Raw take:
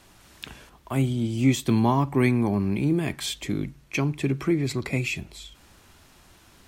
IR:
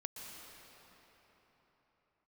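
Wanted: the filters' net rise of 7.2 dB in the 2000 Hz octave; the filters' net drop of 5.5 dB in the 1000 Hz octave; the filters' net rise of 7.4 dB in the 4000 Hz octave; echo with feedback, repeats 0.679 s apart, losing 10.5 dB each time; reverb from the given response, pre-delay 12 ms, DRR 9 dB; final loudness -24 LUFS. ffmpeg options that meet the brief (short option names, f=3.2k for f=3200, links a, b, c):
-filter_complex "[0:a]equalizer=f=1k:t=o:g=-8.5,equalizer=f=2k:t=o:g=8,equalizer=f=4k:t=o:g=7,aecho=1:1:679|1358|2037:0.299|0.0896|0.0269,asplit=2[a][b];[1:a]atrim=start_sample=2205,adelay=12[c];[b][c]afir=irnorm=-1:irlink=0,volume=-7dB[d];[a][d]amix=inputs=2:normalize=0,volume=-0.5dB"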